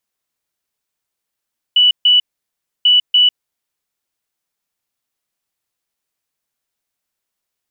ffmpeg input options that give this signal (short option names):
-f lavfi -i "aevalsrc='0.447*sin(2*PI*2960*t)*clip(min(mod(mod(t,1.09),0.29),0.15-mod(mod(t,1.09),0.29))/0.005,0,1)*lt(mod(t,1.09),0.58)':d=2.18:s=44100"